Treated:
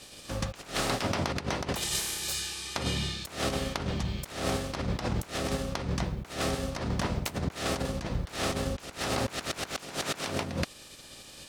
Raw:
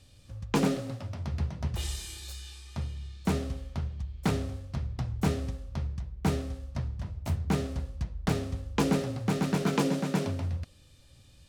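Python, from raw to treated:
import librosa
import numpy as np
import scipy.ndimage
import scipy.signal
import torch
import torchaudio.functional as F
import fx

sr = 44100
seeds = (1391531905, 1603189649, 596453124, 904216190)

y = fx.spec_clip(x, sr, under_db=24)
y = fx.over_compress(y, sr, threshold_db=-35.0, ratio=-0.5)
y = y * librosa.db_to_amplitude(3.5)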